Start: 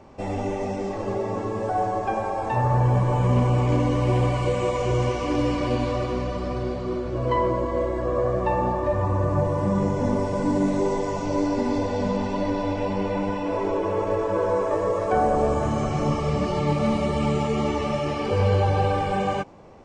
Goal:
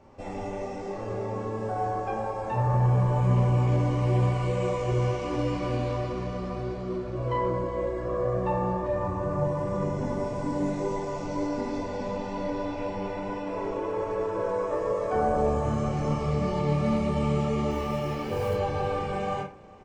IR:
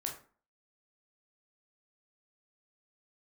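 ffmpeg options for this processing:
-filter_complex "[0:a]lowshelf=frequency=80:gain=5,asettb=1/sr,asplit=3[link_01][link_02][link_03];[link_01]atrim=end=17.714[link_04];[link_02]atrim=start=17.71:end=18.54,asetpts=PTS-STARTPTS,afade=type=in:duration=0.004:curve=qsin,afade=type=out:start_time=0.826:duration=0.004:curve=qsin,acrusher=bits=7:mode=log:mix=0:aa=0.000001[link_05];[link_03]atrim=start=18.536[link_06];[link_04][link_05]acrossfade=duration=0.004:curve1=hsin:curve2=qsin[link_07];[link_07][link_06]acrossfade=duration=0.004:curve1=qsin:curve2=hsin,aecho=1:1:407:0.075[link_08];[1:a]atrim=start_sample=2205,asetrate=57330,aresample=44100[link_09];[link_08][link_09]afir=irnorm=-1:irlink=0,volume=-3.5dB"

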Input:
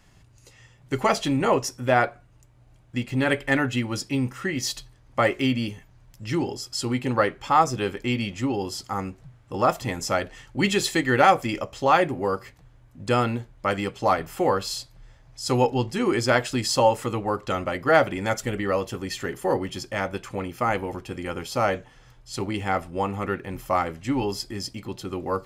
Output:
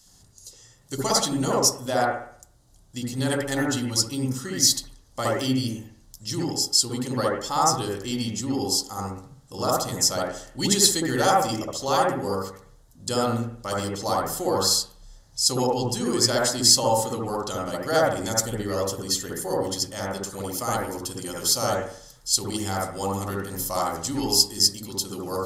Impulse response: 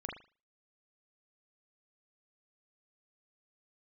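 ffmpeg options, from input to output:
-filter_complex "[0:a]asetnsamples=nb_out_samples=441:pad=0,asendcmd='20.29 highshelf g -5.5',highshelf=frequency=3200:gain=-12,aexciter=amount=15.2:drive=8.5:freq=3800[link_01];[1:a]atrim=start_sample=2205,asetrate=27342,aresample=44100[link_02];[link_01][link_02]afir=irnorm=-1:irlink=0,volume=-5.5dB"

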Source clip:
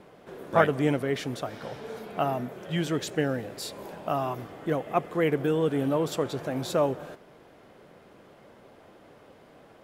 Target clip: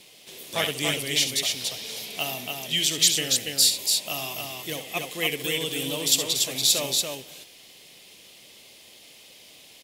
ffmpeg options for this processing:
ffmpeg -i in.wav -af "aecho=1:1:67.06|285.7:0.316|0.631,aexciter=amount=14.4:drive=7:freq=2300,volume=-8.5dB" out.wav

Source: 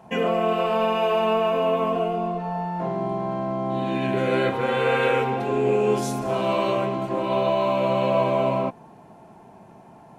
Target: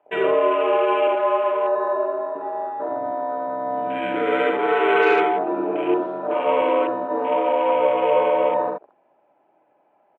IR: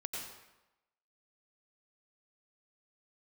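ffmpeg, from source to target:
-filter_complex "[0:a]asettb=1/sr,asplit=3[link_01][link_02][link_03];[link_01]atrim=end=1.074[link_04];[link_02]atrim=start=1.07:end=2.35,asetpts=PTS-STARTPTS,afade=type=in:duration=0.004:curve=qsin,afade=type=out:start_time=1.276:duration=0.004:curve=qsin,acrossover=split=470 2200:gain=0.0794 1 0.178[link_05][link_06][link_07];[link_05][link_06][link_07]amix=inputs=3:normalize=0[link_08];[link_03]atrim=start=2.346[link_09];[link_04][link_08]acrossfade=duration=0.004:curve1=hsin:curve2=qsin[link_10];[link_10][link_09]acrossfade=duration=0.004:curve1=qsin:curve2=hsin,highpass=frequency=400:width_type=q:width=0.5412,highpass=frequency=400:width_type=q:width=1.307,lowpass=frequency=3100:width_type=q:width=0.5176,lowpass=frequency=3100:width_type=q:width=0.7071,lowpass=frequency=3100:width_type=q:width=1.932,afreqshift=-67,asplit=2[link_11][link_12];[link_12]aecho=0:1:28|44|75:0.133|0.2|0.631[link_13];[link_11][link_13]amix=inputs=2:normalize=0,afwtdn=0.02,volume=3dB"

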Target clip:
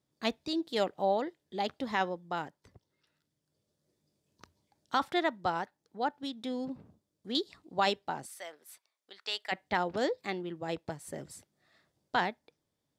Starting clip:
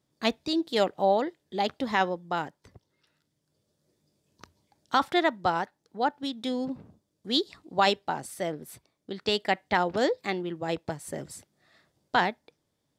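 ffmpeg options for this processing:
ffmpeg -i in.wav -filter_complex "[0:a]asettb=1/sr,asplit=3[link_01][link_02][link_03];[link_01]atrim=end=6.454[link_04];[link_02]atrim=start=6.45:end=7.35,asetpts=PTS-STARTPTS,afade=type=in:duration=0.004:curve=qsin,afade=type=out:start_time=0.896:duration=0.004:curve=qsin,acrossover=split=2900[link_05][link_06];[link_06]acompressor=threshold=-46dB:ratio=4:attack=1:release=60[link_07];[link_05][link_07]amix=inputs=2:normalize=0[link_08];[link_03]atrim=start=7.346[link_09];[link_04][link_08]acrossfade=duration=0.004:curve1=hsin:curve2=qsin[link_10];[link_10][link_09]acrossfade=duration=0.004:curve1=qsin:curve2=hsin,asplit=3[link_11][link_12][link_13];[link_11]afade=type=out:start_time=8.25:duration=0.02[link_14];[link_12]highpass=960,afade=type=in:start_time=8.25:duration=0.02,afade=type=out:start_time=9.51:duration=0.02[link_15];[link_13]afade=type=in:start_time=9.51:duration=0.02[link_16];[link_14][link_15][link_16]amix=inputs=3:normalize=0,volume=-5.5dB" out.wav

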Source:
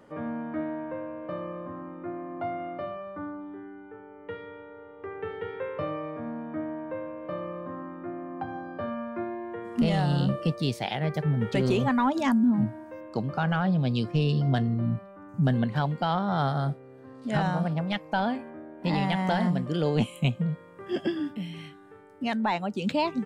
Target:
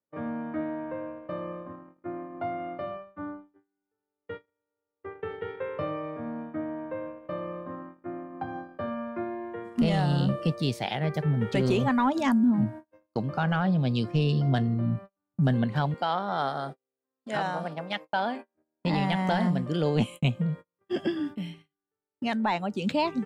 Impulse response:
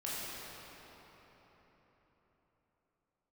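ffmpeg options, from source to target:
-filter_complex "[0:a]asettb=1/sr,asplit=3[link_01][link_02][link_03];[link_01]atrim=end=15.944[link_04];[link_02]atrim=start=15.94:end=18.55,asetpts=PTS-STARTPTS,afade=type=in:duration=0.004:curve=qsin,afade=type=out:start_time=2.606:duration=0.004:curve=qsin,highpass=320[link_05];[link_03]atrim=start=18.546[link_06];[link_04][link_05]acrossfade=duration=0.004:curve1=hsin:curve2=qsin[link_07];[link_07][link_06]acrossfade=duration=0.004:curve1=qsin:curve2=hsin,agate=range=-40dB:threshold=-37dB:ratio=16:detection=peak"

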